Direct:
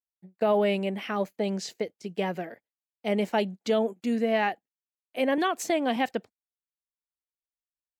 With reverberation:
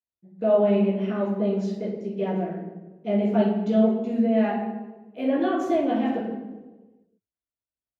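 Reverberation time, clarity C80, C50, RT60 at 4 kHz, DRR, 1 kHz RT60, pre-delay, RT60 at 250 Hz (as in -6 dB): 1.2 s, 5.0 dB, 2.0 dB, 0.80 s, -8.5 dB, 1.1 s, 13 ms, 1.5 s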